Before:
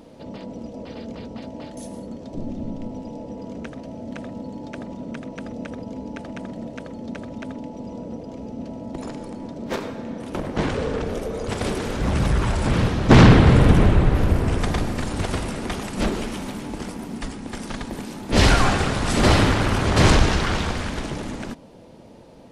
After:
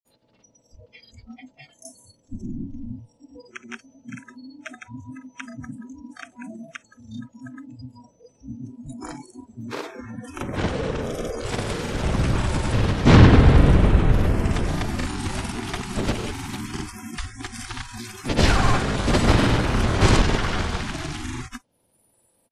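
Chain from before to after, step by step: octaver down 1 oct, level -3 dB; grains 0.1 s, pitch spread up and down by 0 st; upward compressor, threshold -35 dBFS; spectral noise reduction 28 dB; mismatched tape noise reduction encoder only; gain -1 dB

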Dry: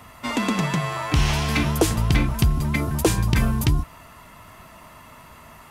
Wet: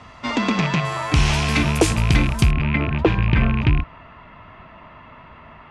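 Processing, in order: rattling part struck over -22 dBFS, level -17 dBFS; LPF 6000 Hz 24 dB/oct, from 0.85 s 10000 Hz, from 2.51 s 3000 Hz; gain +2.5 dB

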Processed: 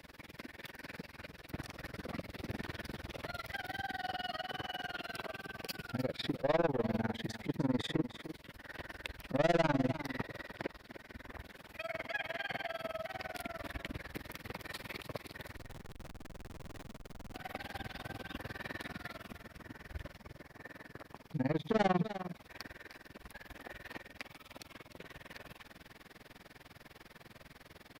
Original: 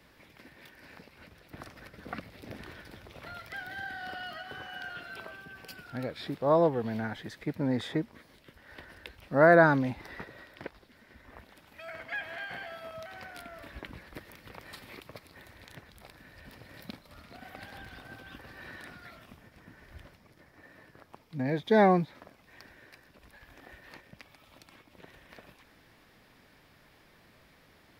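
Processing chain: dynamic EQ 1500 Hz, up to -7 dB, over -55 dBFS, Q 4.3; in parallel at +1 dB: compressor, threshold -42 dBFS, peak gain reduction 23.5 dB; on the sum: soft clip -25 dBFS, distortion -6 dB; tremolo 20 Hz, depth 100%; 15.56–17.36 Schmitt trigger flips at -46 dBFS; echo 0.302 s -12 dB; gain +1.5 dB

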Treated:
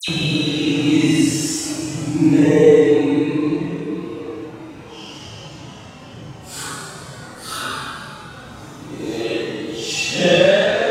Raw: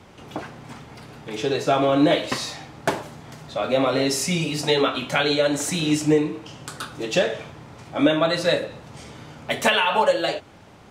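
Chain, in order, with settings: Paulstretch 7.4×, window 0.05 s, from 5.79; dispersion lows, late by 84 ms, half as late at 2800 Hz; gain +4 dB

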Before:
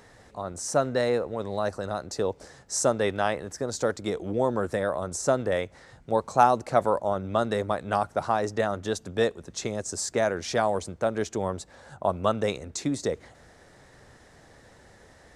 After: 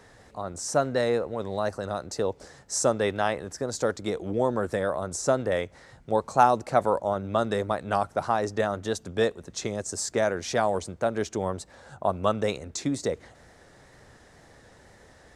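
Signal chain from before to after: wow and flutter 40 cents

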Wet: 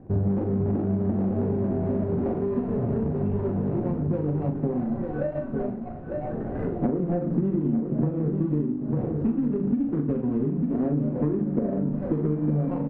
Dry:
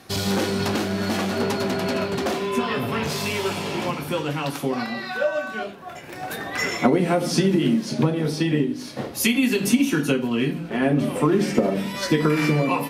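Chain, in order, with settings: median filter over 41 samples; LPF 1200 Hz 12 dB/oct; doubler 40 ms -7 dB; echo 0.898 s -9.5 dB; compressor 6:1, threshold -27 dBFS, peak gain reduction 13 dB; tilt -2.5 dB/oct

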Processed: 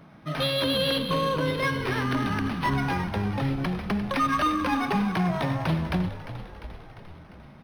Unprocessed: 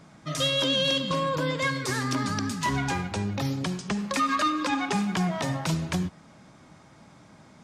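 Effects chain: on a send: frequency-shifting echo 0.349 s, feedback 63%, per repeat -61 Hz, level -12 dB; on the sum: decimation joined by straight lines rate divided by 6×; gain +1.5 dB

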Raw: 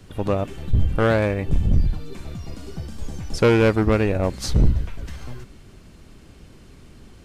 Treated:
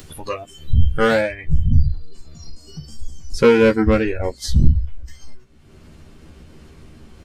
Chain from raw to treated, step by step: spectral noise reduction 19 dB; high shelf 3600 Hz +8 dB, from 1.21 s -3.5 dB; upward compressor, threshold -30 dBFS; doubler 13 ms -3 dB; gain +2 dB

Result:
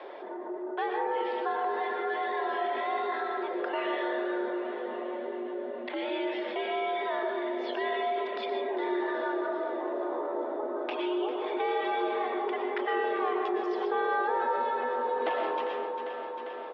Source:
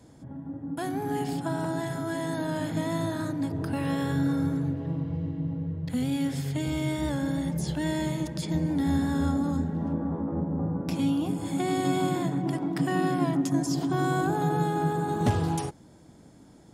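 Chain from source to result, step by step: reverb removal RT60 1.8 s; feedback echo 0.399 s, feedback 60%, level -13 dB; mistuned SSB +81 Hz 370–3200 Hz; digital reverb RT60 1.2 s, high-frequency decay 0.25×, pre-delay 80 ms, DRR 1.5 dB; fast leveller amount 50%

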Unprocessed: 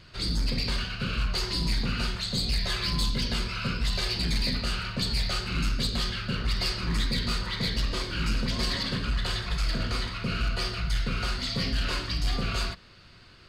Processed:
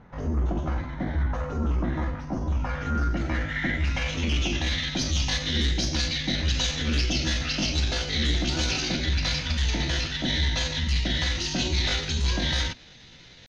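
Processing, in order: pitch shift +5.5 st; low-pass sweep 1100 Hz -> 3900 Hz, 2.48–4.99; gain +2 dB

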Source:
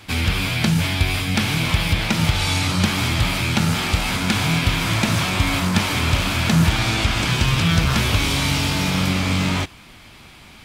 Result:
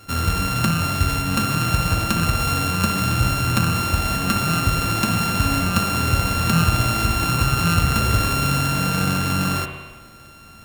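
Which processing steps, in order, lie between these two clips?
sample sorter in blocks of 32 samples; spring tank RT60 1.3 s, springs 58 ms, chirp 70 ms, DRR 4 dB; gain -1.5 dB

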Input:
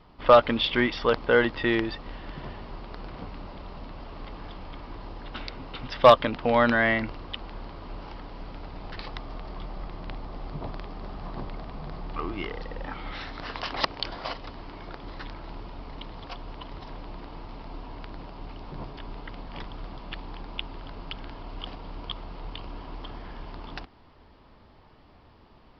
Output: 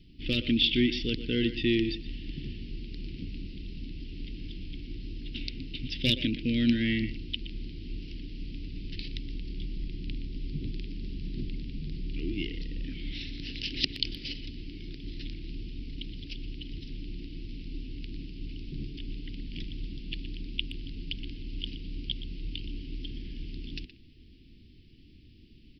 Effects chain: elliptic band-stop 320–2600 Hz, stop band 70 dB; speakerphone echo 0.12 s, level -11 dB; gain +2.5 dB

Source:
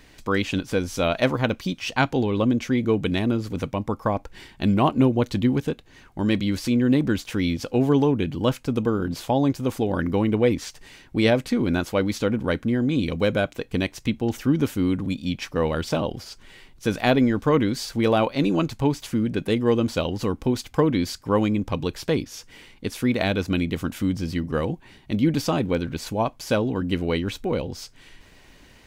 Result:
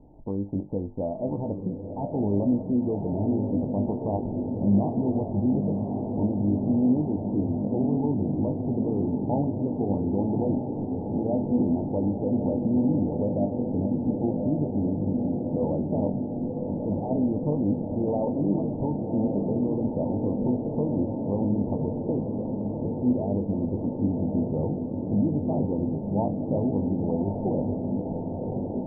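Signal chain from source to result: in parallel at -0.5 dB: compressor, threshold -32 dBFS, peak gain reduction 17.5 dB; on the sum: limiter -14 dBFS, peak gain reduction 10 dB; rippled Chebyshev low-pass 910 Hz, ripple 3 dB; resonator 50 Hz, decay 0.23 s, harmonics all, mix 80%; diffused feedback echo 1.091 s, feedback 79%, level -5.5 dB; gain +1.5 dB

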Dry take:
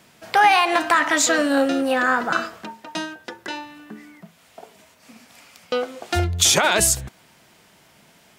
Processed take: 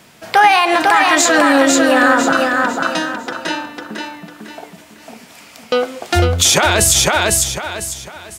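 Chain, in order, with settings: on a send: feedback echo 0.5 s, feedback 33%, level -4.5 dB; on the sum: maximiser +8.5 dB; gain -1 dB

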